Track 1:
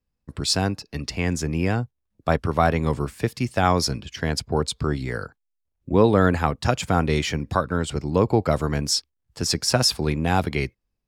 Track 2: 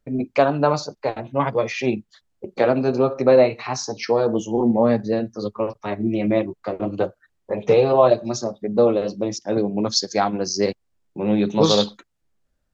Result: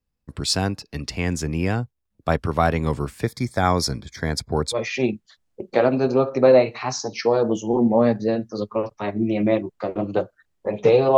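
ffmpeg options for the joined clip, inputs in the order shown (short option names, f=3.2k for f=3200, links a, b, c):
-filter_complex "[0:a]asettb=1/sr,asplit=3[a][b][c];[a]atrim=end=3.234[d];[b]atrim=start=3.23:end=4.79,asetpts=PTS-STARTPTS,afade=t=in:d=0.004:c=qsin,afade=t=out:st=1.556:d=0.004:c=qsin,asuperstop=centerf=2800:order=8:qfactor=3.3[e];[c]atrim=start=4.786[f];[d][e]acrossfade=d=0.004:c1=hsin:c2=qsin[g];[g][f]acrossfade=d=0.004:c1=qsin:c2=hsin,apad=whole_dur=11.17,atrim=end=11.17,atrim=end=4.79,asetpts=PTS-STARTPTS[h];[1:a]atrim=start=1.55:end=8.01,asetpts=PTS-STARTPTS[i];[h][i]acrossfade=d=0.08:c1=tri:c2=tri"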